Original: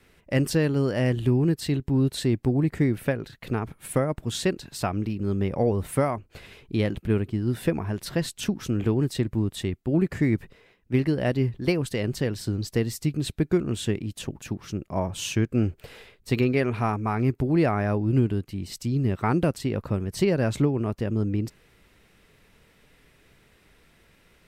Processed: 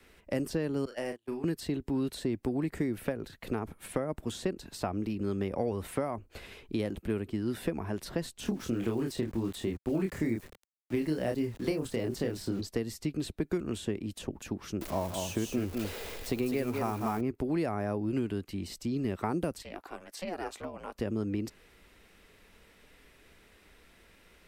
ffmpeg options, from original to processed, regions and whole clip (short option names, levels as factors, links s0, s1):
-filter_complex "[0:a]asettb=1/sr,asplit=3[s0][s1][s2];[s0]atrim=end=0.854[s3];[s1]atrim=start=0.85:end=1.44,asetpts=PTS-STARTPTS,afade=t=in:d=0.004:c=qsin,afade=t=out:st=0.586:d=0.004:c=qsin,highpass=f=910:p=1,agate=range=0.0224:threshold=0.0224:ratio=16:release=100:detection=peak,asplit=2[s4][s5];[s5]adelay=37,volume=0.398[s6];[s4][s6]amix=inputs=2:normalize=0,atrim=end_sample=26019[s7];[s2]atrim=start=1.436[s8];[s3][s7]acrossfade=d=0.004:c1=hsin:c2=qsin[s9];[s9][s8]acrossfade=d=0.004:c1=qsin:c2=hsin,asettb=1/sr,asplit=3[s10][s11][s12];[s10]atrim=end=8.404[s13];[s11]atrim=start=8.4:end=12.61,asetpts=PTS-STARTPTS,afade=t=in:d=0.004:c=qsin,afade=t=out:st=4.206:d=0.004:c=qsin,asplit=2[s14][s15];[s15]adelay=26,volume=0.708[s16];[s14][s16]amix=inputs=2:normalize=0,atrim=end_sample=185661,aeval=exprs='val(0)*gte(abs(val(0)),0.00631)':c=same[s17];[s12]atrim=start=12.606[s18];[s13][s17]acrossfade=d=0.004:c1=hsin:c2=qsin[s19];[s19][s18]acrossfade=d=0.004:c1=qsin:c2=hsin,asettb=1/sr,asplit=3[s20][s21][s22];[s20]atrim=end=14.814[s23];[s21]atrim=start=14.81:end=17.21,asetpts=PTS-STARTPTS,afade=t=in:d=0.004:c=qsin,afade=t=out:st=2.396:d=0.004:c=qsin,aeval=exprs='val(0)+0.5*0.0168*sgn(val(0))':c=same,aemphasis=mode=production:type=75kf,aecho=1:1:201:0.422,atrim=end_sample=105840[s24];[s22]atrim=start=17.206[s25];[s23][s24]acrossfade=d=0.004:c1=hsin:c2=qsin[s26];[s26][s25]acrossfade=d=0.004:c1=qsin:c2=hsin,asettb=1/sr,asplit=3[s27][s28][s29];[s27]atrim=end=19.624[s30];[s28]atrim=start=19.62:end=20.95,asetpts=PTS-STARTPTS,afade=t=in:d=0.004:c=qsin,afade=t=out:st=1.326:d=0.004:c=qsin,highpass=720,aeval=exprs='val(0)*sin(2*PI*180*n/s)':c=same[s31];[s29]atrim=start=20.946[s32];[s30][s31]acrossfade=d=0.004:c1=hsin:c2=qsin[s33];[s33][s32]acrossfade=d=0.004:c1=qsin:c2=hsin,equalizer=f=130:t=o:w=0.66:g=-10.5,acrossover=split=170|1100|6000[s34][s35][s36][s37];[s34]acompressor=threshold=0.01:ratio=4[s38];[s35]acompressor=threshold=0.0316:ratio=4[s39];[s36]acompressor=threshold=0.00447:ratio=4[s40];[s37]acompressor=threshold=0.00316:ratio=4[s41];[s38][s39][s40][s41]amix=inputs=4:normalize=0"